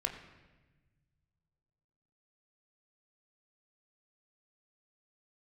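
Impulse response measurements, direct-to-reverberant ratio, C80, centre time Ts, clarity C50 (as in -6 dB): 3.0 dB, 9.5 dB, 23 ms, 8.5 dB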